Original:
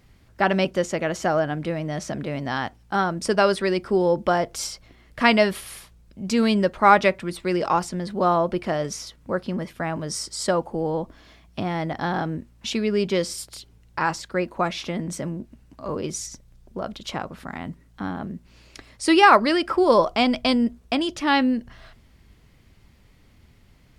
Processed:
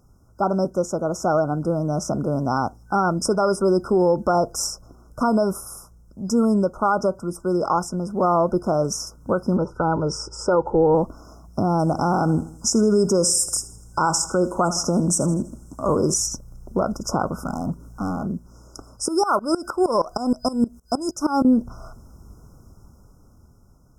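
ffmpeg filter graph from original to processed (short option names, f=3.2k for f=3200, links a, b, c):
-filter_complex "[0:a]asettb=1/sr,asplit=3[a][b][c];[a]atrim=end=9.574[d];[b]atrim=start=9.57:end=10.95,asetpts=PTS-STARTPTS,afade=t=in:d=0.004:c=qsin,afade=t=out:st=1.376:d=0.004:c=qsin,lowpass=3.5k,aecho=1:1:2.2:0.57,atrim=end_sample=60858[e];[c]atrim=start=10.946[f];[d][e]acrossfade=d=0.004:c1=hsin:c2=qsin[g];[g][f]acrossfade=d=0.004:c1=qsin:c2=hsin,asettb=1/sr,asplit=3[h][i][j];[h]atrim=end=11.794[k];[i]atrim=start=11.79:end=16.14,asetpts=PTS-STARTPTS,afade=t=in:d=0.004:c=qsin,afade=t=out:st=4.346:d=0.004:c=qsin,equalizer=f=8k:t=o:w=0.95:g=12.5,aecho=1:1:81|162|243|324:0.126|0.0541|0.0233|0.01,atrim=end_sample=191835[l];[j]atrim=start=16.136[m];[k][l]acrossfade=d=0.004:c1=hsin:c2=qsin[n];[n][m]acrossfade=d=0.004:c1=qsin:c2=hsin,asettb=1/sr,asplit=3[o][p][q];[o]atrim=end=17.394[r];[p]atrim=start=17.39:end=18.26,asetpts=PTS-STARTPTS,afade=t=in:d=0.004:c=qsin,afade=t=out:st=0.866:d=0.004:c=qsin,acompressor=mode=upward:threshold=-43dB:ratio=2.5:attack=3.2:release=140:knee=2.83:detection=peak,asoftclip=type=hard:threshold=-30.5dB[s];[q]atrim=start=18.256[t];[r][s]acrossfade=d=0.004:c1=hsin:c2=qsin[u];[u][t]acrossfade=d=0.004:c1=qsin:c2=hsin,asettb=1/sr,asplit=3[v][w][x];[v]atrim=end=19.084[y];[w]atrim=start=19.08:end=21.45,asetpts=PTS-STARTPTS,afade=t=in:d=0.004:c=qsin,afade=t=out:st=2.366:d=0.004:c=qsin,highshelf=f=3k:g=11.5,aeval=exprs='val(0)*pow(10,-20*if(lt(mod(-6.4*n/s,1),2*abs(-6.4)/1000),1-mod(-6.4*n/s,1)/(2*abs(-6.4)/1000),(mod(-6.4*n/s,1)-2*abs(-6.4)/1000)/(1-2*abs(-6.4)/1000))/20)':c=same[z];[x]atrim=start=21.446[aa];[y][z]acrossfade=d=0.004:c1=hsin:c2=qsin[ab];[ab][aa]acrossfade=d=0.004:c1=qsin:c2=hsin,afftfilt=real='re*(1-between(b*sr/4096,1500,5000))':imag='im*(1-between(b*sr/4096,1500,5000))':win_size=4096:overlap=0.75,dynaudnorm=f=310:g=11:m=16.5dB,alimiter=limit=-10dB:level=0:latency=1:release=82"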